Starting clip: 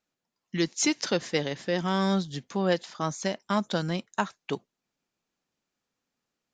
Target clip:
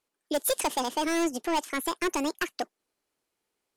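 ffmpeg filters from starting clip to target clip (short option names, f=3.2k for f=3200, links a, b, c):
-af "asoftclip=type=hard:threshold=-23.5dB,asetrate=76440,aresample=44100,volume=2dB"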